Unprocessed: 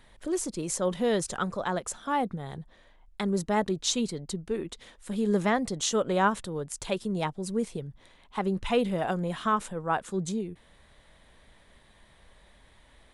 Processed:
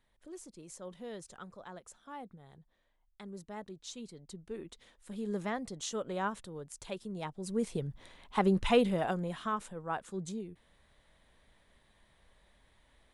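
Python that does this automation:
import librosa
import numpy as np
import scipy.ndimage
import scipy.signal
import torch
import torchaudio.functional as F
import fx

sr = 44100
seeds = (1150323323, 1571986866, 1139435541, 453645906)

y = fx.gain(x, sr, db=fx.line((3.92, -18.0), (4.59, -10.5), (7.21, -10.5), (7.86, 1.5), (8.61, 1.5), (9.51, -8.5)))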